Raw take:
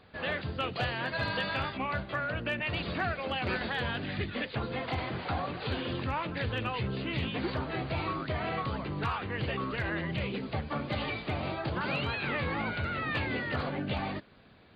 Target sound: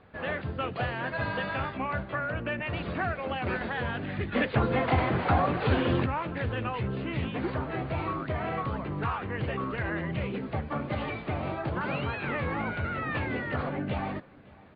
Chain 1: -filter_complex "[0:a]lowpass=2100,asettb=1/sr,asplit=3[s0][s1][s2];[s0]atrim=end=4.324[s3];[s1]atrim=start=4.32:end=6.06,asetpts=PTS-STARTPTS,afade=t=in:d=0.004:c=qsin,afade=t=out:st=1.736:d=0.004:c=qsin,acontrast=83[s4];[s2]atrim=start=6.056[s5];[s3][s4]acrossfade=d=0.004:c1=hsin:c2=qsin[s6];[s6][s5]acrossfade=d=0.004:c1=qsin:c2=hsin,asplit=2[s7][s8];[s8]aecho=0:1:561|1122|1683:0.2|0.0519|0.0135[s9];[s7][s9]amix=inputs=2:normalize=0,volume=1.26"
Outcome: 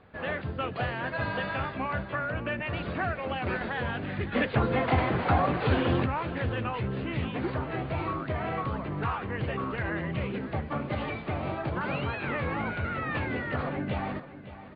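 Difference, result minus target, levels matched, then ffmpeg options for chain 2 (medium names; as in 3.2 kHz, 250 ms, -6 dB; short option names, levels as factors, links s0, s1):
echo-to-direct +10 dB
-filter_complex "[0:a]lowpass=2100,asettb=1/sr,asplit=3[s0][s1][s2];[s0]atrim=end=4.324[s3];[s1]atrim=start=4.32:end=6.06,asetpts=PTS-STARTPTS,afade=t=in:d=0.004:c=qsin,afade=t=out:st=1.736:d=0.004:c=qsin,acontrast=83[s4];[s2]atrim=start=6.056[s5];[s3][s4]acrossfade=d=0.004:c1=hsin:c2=qsin[s6];[s6][s5]acrossfade=d=0.004:c1=qsin:c2=hsin,asplit=2[s7][s8];[s8]aecho=0:1:561|1122:0.0631|0.0164[s9];[s7][s9]amix=inputs=2:normalize=0,volume=1.26"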